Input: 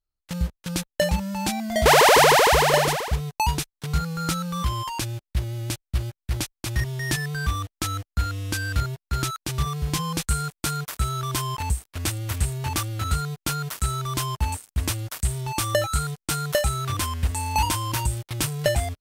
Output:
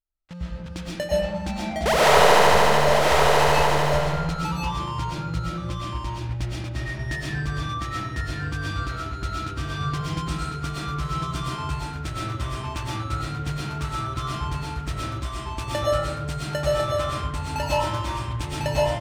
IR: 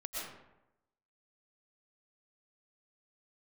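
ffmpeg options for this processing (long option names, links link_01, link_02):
-filter_complex "[0:a]adynamicsmooth=sensitivity=2:basefreq=3400,aecho=1:1:1050:0.668[link_01];[1:a]atrim=start_sample=2205[link_02];[link_01][link_02]afir=irnorm=-1:irlink=0,volume=-2.5dB"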